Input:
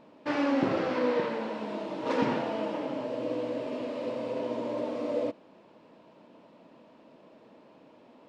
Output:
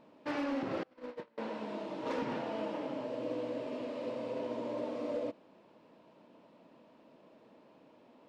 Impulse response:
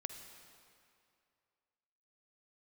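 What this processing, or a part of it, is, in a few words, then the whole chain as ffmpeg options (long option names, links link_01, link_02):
limiter into clipper: -filter_complex "[0:a]alimiter=limit=-20.5dB:level=0:latency=1:release=209,asoftclip=type=hard:threshold=-23.5dB,asettb=1/sr,asplit=3[link_01][link_02][link_03];[link_01]atrim=end=0.834[link_04];[link_02]atrim=start=0.83:end=1.38,asetpts=PTS-STARTPTS,afade=type=in:duration=0.004:curve=qsin,afade=type=out:start_time=0.546:duration=0.004:curve=qsin,agate=range=-31dB:threshold=-27dB:ratio=16:detection=peak[link_05];[link_03]atrim=start=1.376[link_06];[link_04][link_05]acrossfade=duration=0.004:curve1=hsin:curve2=qsin[link_07];[link_07][link_06]acrossfade=duration=0.004:curve1=qsin:curve2=hsin,volume=-5dB"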